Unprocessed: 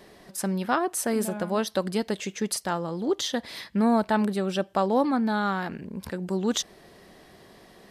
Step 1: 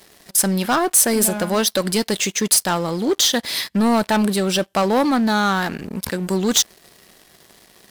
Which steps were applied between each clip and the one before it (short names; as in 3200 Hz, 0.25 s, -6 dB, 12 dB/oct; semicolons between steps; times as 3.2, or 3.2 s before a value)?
high shelf 2200 Hz +9.5 dB; sample leveller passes 3; high shelf 8100 Hz +5 dB; gain -3.5 dB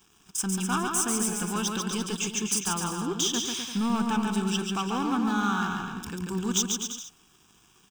fixed phaser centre 2900 Hz, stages 8; on a send: bouncing-ball echo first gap 0.14 s, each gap 0.8×, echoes 5; on the sum: gain -8 dB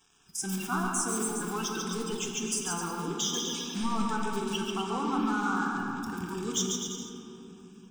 bin magnitudes rounded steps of 30 dB; flange 0.29 Hz, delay 4.4 ms, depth 5.9 ms, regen -72%; reverb RT60 3.3 s, pre-delay 7 ms, DRR 2.5 dB